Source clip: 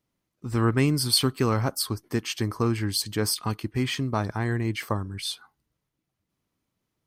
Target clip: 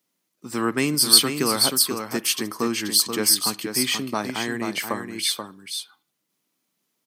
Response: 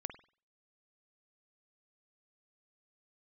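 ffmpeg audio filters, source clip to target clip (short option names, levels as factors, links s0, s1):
-filter_complex "[0:a]highpass=f=180:w=0.5412,highpass=f=180:w=1.3066,highshelf=f=2200:g=8,asoftclip=type=hard:threshold=0.631,aecho=1:1:482:0.473,asplit=2[s0][s1];[1:a]atrim=start_sample=2205,highshelf=f=4400:g=11.5[s2];[s1][s2]afir=irnorm=-1:irlink=0,volume=0.316[s3];[s0][s3]amix=inputs=2:normalize=0,volume=0.841"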